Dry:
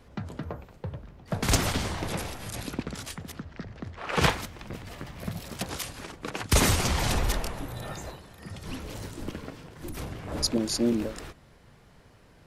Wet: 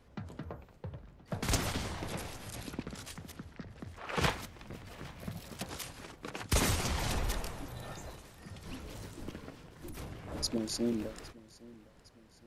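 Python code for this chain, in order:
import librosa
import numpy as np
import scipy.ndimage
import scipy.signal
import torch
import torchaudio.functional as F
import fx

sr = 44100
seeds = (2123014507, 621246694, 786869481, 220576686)

y = fx.echo_feedback(x, sr, ms=810, feedback_pct=49, wet_db=-21.5)
y = F.gain(torch.from_numpy(y), -7.5).numpy()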